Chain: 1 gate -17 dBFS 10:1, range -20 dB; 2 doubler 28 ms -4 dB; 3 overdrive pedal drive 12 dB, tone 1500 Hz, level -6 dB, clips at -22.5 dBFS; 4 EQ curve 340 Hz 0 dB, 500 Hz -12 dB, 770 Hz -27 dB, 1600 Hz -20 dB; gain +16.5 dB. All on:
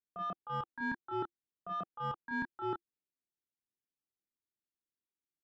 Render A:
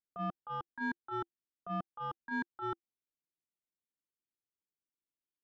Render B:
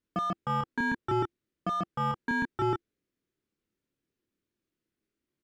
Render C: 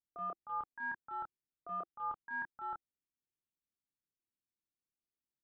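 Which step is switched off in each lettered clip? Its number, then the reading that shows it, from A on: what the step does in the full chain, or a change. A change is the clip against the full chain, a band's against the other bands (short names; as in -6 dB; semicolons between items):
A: 2, 250 Hz band +2.5 dB; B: 1, 125 Hz band +4.5 dB; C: 3, 250 Hz band -16.0 dB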